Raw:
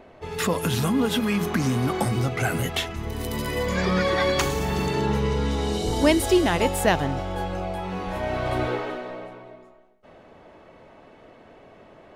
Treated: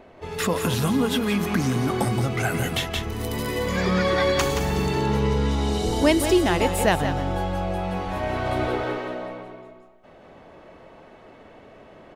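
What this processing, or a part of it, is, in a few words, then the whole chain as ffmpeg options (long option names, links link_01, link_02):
ducked delay: -filter_complex "[0:a]asplit=3[link_01][link_02][link_03];[link_02]adelay=173,volume=-2dB[link_04];[link_03]apad=whole_len=543751[link_05];[link_04][link_05]sidechaincompress=threshold=-28dB:ratio=8:attack=34:release=263[link_06];[link_01][link_06]amix=inputs=2:normalize=0"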